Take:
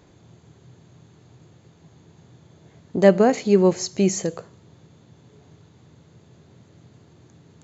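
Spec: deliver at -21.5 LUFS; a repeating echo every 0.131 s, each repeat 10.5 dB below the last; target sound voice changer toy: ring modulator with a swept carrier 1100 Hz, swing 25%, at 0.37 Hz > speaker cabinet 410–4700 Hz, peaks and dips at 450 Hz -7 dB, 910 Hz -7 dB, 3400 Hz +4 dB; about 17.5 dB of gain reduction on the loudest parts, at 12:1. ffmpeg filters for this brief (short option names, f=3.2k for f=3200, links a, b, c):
-af "acompressor=threshold=-27dB:ratio=12,aecho=1:1:131|262|393:0.299|0.0896|0.0269,aeval=exprs='val(0)*sin(2*PI*1100*n/s+1100*0.25/0.37*sin(2*PI*0.37*n/s))':c=same,highpass=410,equalizer=f=450:t=q:w=4:g=-7,equalizer=f=910:t=q:w=4:g=-7,equalizer=f=3.4k:t=q:w=4:g=4,lowpass=f=4.7k:w=0.5412,lowpass=f=4.7k:w=1.3066,volume=15.5dB"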